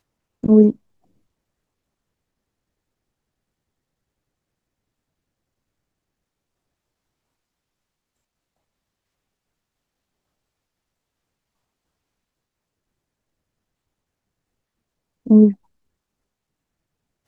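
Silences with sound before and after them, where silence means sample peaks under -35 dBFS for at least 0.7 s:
0.72–15.26 s

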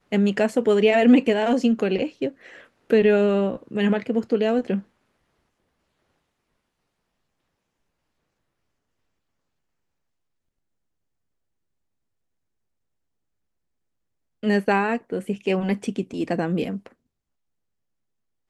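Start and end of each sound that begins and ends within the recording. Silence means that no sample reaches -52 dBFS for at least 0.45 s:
14.43–16.93 s

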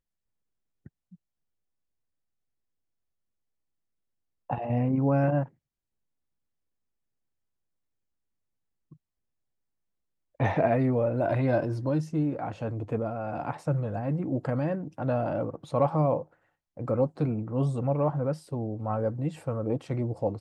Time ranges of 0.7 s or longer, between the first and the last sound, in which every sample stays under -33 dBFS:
5.44–10.40 s

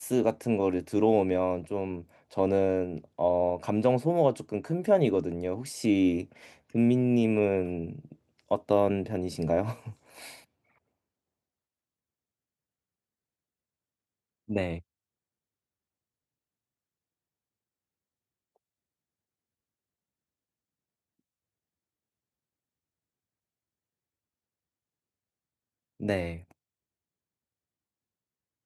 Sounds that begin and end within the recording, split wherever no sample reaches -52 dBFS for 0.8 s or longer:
14.48–14.81 s
26.00–26.51 s

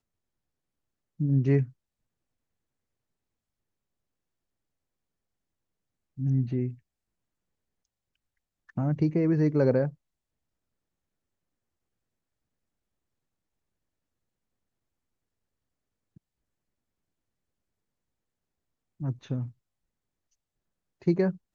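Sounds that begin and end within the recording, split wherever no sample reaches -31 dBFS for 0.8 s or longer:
1.20–1.64 s
6.19–6.70 s
8.77–9.88 s
19.01–19.45 s

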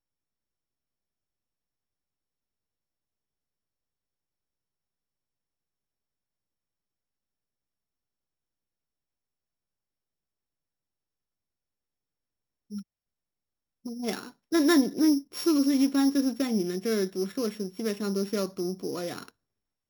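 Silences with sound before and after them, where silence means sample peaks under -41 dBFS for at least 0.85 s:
12.82–13.86 s

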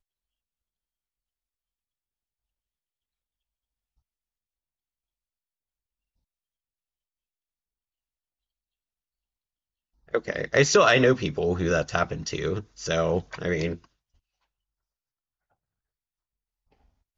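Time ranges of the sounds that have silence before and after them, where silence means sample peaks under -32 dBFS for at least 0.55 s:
10.14–13.75 s

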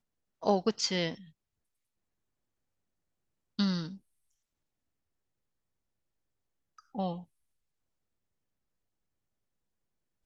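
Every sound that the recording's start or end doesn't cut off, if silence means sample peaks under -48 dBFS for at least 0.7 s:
3.59–3.97 s
6.79–7.24 s

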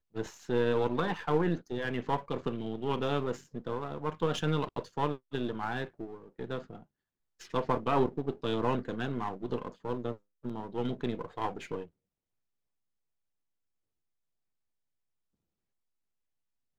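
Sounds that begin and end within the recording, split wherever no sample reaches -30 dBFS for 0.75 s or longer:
7.54–11.80 s

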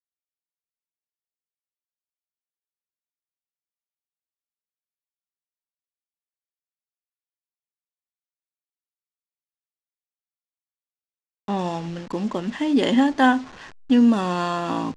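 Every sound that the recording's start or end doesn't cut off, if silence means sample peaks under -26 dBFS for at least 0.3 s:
11.48–13.41 s

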